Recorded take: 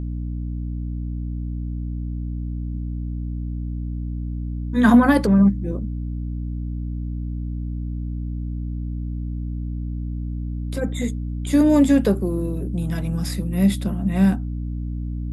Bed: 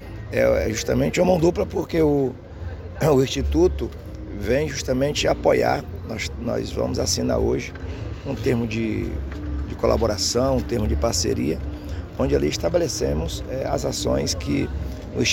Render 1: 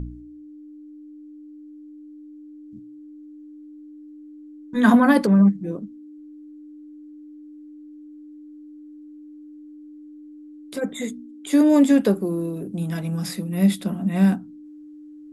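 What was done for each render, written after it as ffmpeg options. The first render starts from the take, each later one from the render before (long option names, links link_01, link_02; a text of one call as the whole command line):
ffmpeg -i in.wav -af "bandreject=frequency=60:width_type=h:width=4,bandreject=frequency=120:width_type=h:width=4,bandreject=frequency=180:width_type=h:width=4,bandreject=frequency=240:width_type=h:width=4" out.wav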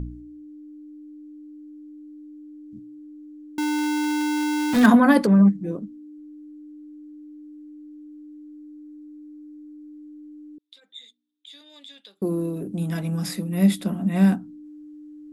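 ffmpeg -i in.wav -filter_complex "[0:a]asettb=1/sr,asplit=3[link_01][link_02][link_03];[link_01]atrim=end=3.584[link_04];[link_02]atrim=start=3.58:end=4.86,asetpts=PTS-STARTPTS,afade=type=in:duration=0.004:curve=qsin,afade=type=out:start_time=1.276:duration=0.004:curve=qsin,aeval=exprs='val(0)+0.5*0.119*sgn(val(0))':channel_layout=same[link_05];[link_03]atrim=start=4.856[link_06];[link_04][link_05]acrossfade=duration=0.004:curve1=hsin:curve2=qsin[link_07];[link_07][link_06]acrossfade=duration=0.004:curve1=qsin:curve2=hsin,asettb=1/sr,asplit=3[link_08][link_09][link_10];[link_08]atrim=end=8.564[link_11];[link_09]atrim=start=8.56:end=9.93,asetpts=PTS-STARTPTS,afade=type=in:duration=0.004:curve=qsin,afade=type=out:start_time=1.366:duration=0.004:curve=qsin,asuperstop=centerf=3000:order=4:qfactor=4.5[link_12];[link_10]atrim=start=9.926[link_13];[link_11][link_12]acrossfade=duration=0.004:curve1=hsin:curve2=qsin[link_14];[link_14][link_13]acrossfade=duration=0.004:curve1=qsin:curve2=hsin,asettb=1/sr,asplit=3[link_15][link_16][link_17];[link_15]atrim=end=10.584[link_18];[link_16]atrim=start=10.58:end=12.22,asetpts=PTS-STARTPTS,afade=type=in:duration=0.004:curve=qsin,afade=type=out:start_time=1.636:duration=0.004:curve=qsin,bandpass=frequency=3600:width_type=q:width=8.7[link_19];[link_17]atrim=start=12.216[link_20];[link_18][link_19]acrossfade=duration=0.004:curve1=hsin:curve2=qsin[link_21];[link_21][link_20]acrossfade=duration=0.004:curve1=qsin:curve2=hsin" out.wav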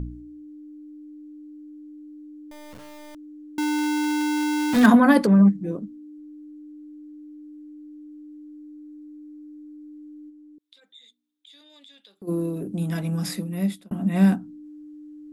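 ffmpeg -i in.wav -filter_complex "[0:a]asettb=1/sr,asplit=3[link_01][link_02][link_03];[link_01]atrim=end=2.514[link_04];[link_02]atrim=start=2.51:end=3.15,asetpts=PTS-STARTPTS,afade=type=in:duration=0.004:curve=qsin,afade=type=out:start_time=0.636:duration=0.004:curve=qsin,acrusher=bits=4:dc=4:mix=0:aa=0.000001[link_05];[link_03]atrim=start=3.146[link_06];[link_04][link_05]acrossfade=duration=0.004:curve1=hsin:curve2=qsin[link_07];[link_07][link_06]acrossfade=duration=0.004:curve1=qsin:curve2=hsin,asplit=3[link_08][link_09][link_10];[link_08]afade=type=out:start_time=10.29:duration=0.02[link_11];[link_09]acompressor=threshold=-51dB:ratio=2:attack=3.2:release=140:knee=1:detection=peak,afade=type=in:start_time=10.29:duration=0.02,afade=type=out:start_time=12.27:duration=0.02[link_12];[link_10]afade=type=in:start_time=12.27:duration=0.02[link_13];[link_11][link_12][link_13]amix=inputs=3:normalize=0,asplit=2[link_14][link_15];[link_14]atrim=end=13.91,asetpts=PTS-STARTPTS,afade=type=out:start_time=13.34:duration=0.57[link_16];[link_15]atrim=start=13.91,asetpts=PTS-STARTPTS,afade=type=in:duration=0.004:curve=hsin[link_17];[link_16][link_17]concat=n=2:v=0:a=1" out.wav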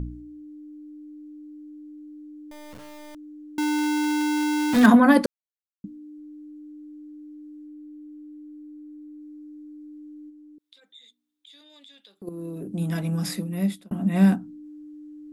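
ffmpeg -i in.wav -filter_complex "[0:a]asettb=1/sr,asplit=3[link_01][link_02][link_03];[link_01]atrim=end=7.664[link_04];[link_02]atrim=start=7.66:end=9.2,asetpts=PTS-STARTPTS,afade=type=in:duration=0.004:curve=qsin,afade=type=out:start_time=1.536:duration=0.004:curve=qsin,equalizer=frequency=5800:width_type=o:width=1.2:gain=-4[link_05];[link_03]atrim=start=9.196[link_06];[link_04][link_05]acrossfade=duration=0.004:curve1=hsin:curve2=qsin[link_07];[link_07][link_06]acrossfade=duration=0.004:curve1=qsin:curve2=hsin,asplit=4[link_08][link_09][link_10][link_11];[link_08]atrim=end=5.26,asetpts=PTS-STARTPTS,afade=type=out:start_time=5.256:duration=0.004:curve=hsin[link_12];[link_09]atrim=start=5.26:end=5.84,asetpts=PTS-STARTPTS,volume=0[link_13];[link_10]atrim=start=5.84:end=12.29,asetpts=PTS-STARTPTS,afade=type=in:duration=0.004:curve=hsin,afade=type=out:start_time=6.446:duration=0.004:curve=hsin:silence=0.177828[link_14];[link_11]atrim=start=12.29,asetpts=PTS-STARTPTS,afade=type=in:duration=0.56:silence=0.177828[link_15];[link_12][link_13][link_14][link_15]concat=n=4:v=0:a=1" out.wav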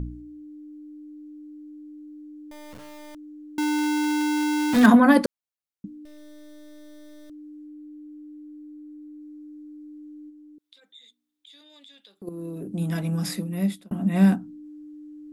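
ffmpeg -i in.wav -filter_complex "[0:a]asettb=1/sr,asplit=3[link_01][link_02][link_03];[link_01]atrim=end=6.054[link_04];[link_02]atrim=start=6.05:end=7.3,asetpts=PTS-STARTPTS,afade=type=in:duration=0.004:curve=qsin,afade=type=out:start_time=1.246:duration=0.004:curve=qsin,acrusher=bits=6:dc=4:mix=0:aa=0.000001[link_05];[link_03]atrim=start=7.296[link_06];[link_04][link_05]acrossfade=duration=0.004:curve1=hsin:curve2=qsin[link_07];[link_07][link_06]acrossfade=duration=0.004:curve1=qsin:curve2=hsin" out.wav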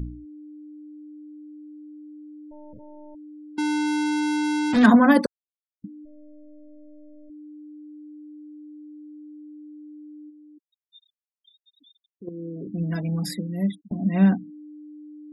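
ffmpeg -i in.wav -af "afftfilt=real='re*gte(hypot(re,im),0.02)':imag='im*gte(hypot(re,im),0.02)':win_size=1024:overlap=0.75" out.wav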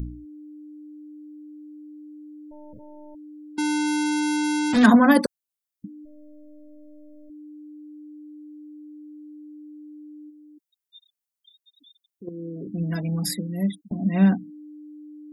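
ffmpeg -i in.wav -af "highshelf=frequency=6300:gain=10.5" out.wav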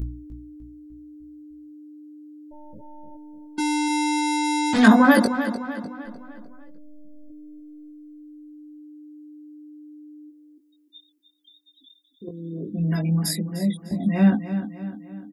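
ffmpeg -i in.wav -filter_complex "[0:a]asplit=2[link_01][link_02];[link_02]adelay=19,volume=-3dB[link_03];[link_01][link_03]amix=inputs=2:normalize=0,asplit=2[link_04][link_05];[link_05]adelay=301,lowpass=frequency=5000:poles=1,volume=-10.5dB,asplit=2[link_06][link_07];[link_07]adelay=301,lowpass=frequency=5000:poles=1,volume=0.49,asplit=2[link_08][link_09];[link_09]adelay=301,lowpass=frequency=5000:poles=1,volume=0.49,asplit=2[link_10][link_11];[link_11]adelay=301,lowpass=frequency=5000:poles=1,volume=0.49,asplit=2[link_12][link_13];[link_13]adelay=301,lowpass=frequency=5000:poles=1,volume=0.49[link_14];[link_04][link_06][link_08][link_10][link_12][link_14]amix=inputs=6:normalize=0" out.wav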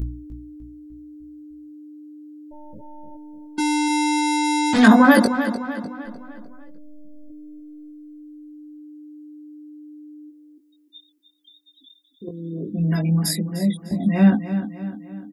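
ffmpeg -i in.wav -af "volume=2.5dB,alimiter=limit=-1dB:level=0:latency=1" out.wav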